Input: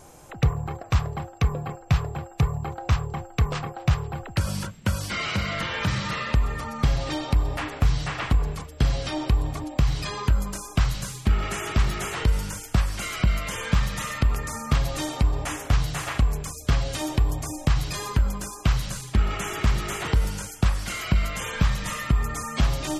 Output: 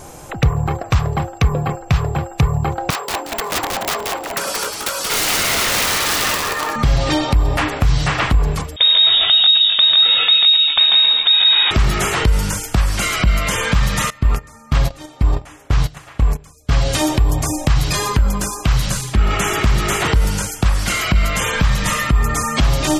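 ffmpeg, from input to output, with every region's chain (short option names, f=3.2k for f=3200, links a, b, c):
-filter_complex "[0:a]asettb=1/sr,asplit=3[a][b][c];[a]atrim=end=2.904[d];[b]atrim=start=2.9:end=6.76,asetpts=PTS-STARTPTS,afade=t=in:d=0.004:c=qsin,afade=t=out:st=3.856:d=0.004:c=qsin,highpass=f=420:w=0.5412,highpass=f=420:w=1.3066,aeval=exprs='(mod(18.8*val(0)+1,2)-1)/18.8':c=same,asplit=6[e][f][g][h][i][j];[f]adelay=180,afreqshift=-120,volume=-3dB[k];[g]adelay=360,afreqshift=-240,volume=-12.1dB[l];[h]adelay=540,afreqshift=-360,volume=-21.2dB[m];[i]adelay=720,afreqshift=-480,volume=-30.4dB[n];[j]adelay=900,afreqshift=-600,volume=-39.5dB[o];[e][k][l][m][n][o]amix=inputs=6:normalize=0,atrim=end_sample=170226[p];[c]atrim=start=6.756[q];[d][p]acrossfade=d=0.004:c1=hsin:c2=qsin[r];[r][q]acrossfade=d=0.004:c1=qsin:c2=hsin,asettb=1/sr,asplit=3[s][t][u];[s]atrim=end=8.764[v];[t]atrim=start=8.76:end=11.71,asetpts=PTS-STARTPTS,afade=t=in:d=0.004:c=qsin,afade=t=out:st=2.946:d=0.004:c=qsin,aecho=1:1:143|164|270:0.668|0.668|0.316,atrim=end_sample=130095,lowpass=f=3.2k:t=q:w=0.5098,lowpass=f=3.2k:t=q:w=0.6013,lowpass=f=3.2k:t=q:w=0.9,lowpass=f=3.2k:t=q:w=2.563,afreqshift=-3800[w];[u]atrim=start=11.706[x];[v][w]acrossfade=d=0.004:c1=hsin:c2=qsin[y];[y][x]acrossfade=d=0.004:c1=qsin:c2=hsin,asettb=1/sr,asplit=3[z][aa][ab];[z]atrim=end=14.104[ac];[aa]atrim=start=14.1:end=16.71,asetpts=PTS-STARTPTS,afade=t=in:d=0.004:c=qsin,afade=t=out:st=2.606:d=0.004:c=qsin,agate=range=-21dB:threshold=-26dB:ratio=16:release=100:detection=peak,equalizer=f=12k:t=o:w=2.3:g=-3.5[ad];[ab]atrim=start=16.706[ae];[ac][ad]acrossfade=d=0.004:c1=hsin:c2=qsin[af];[af][ae]acrossfade=d=0.004:c1=qsin:c2=hsin,acompressor=threshold=-22dB:ratio=2,alimiter=level_in=16dB:limit=-1dB:release=50:level=0:latency=1,volume=-4dB"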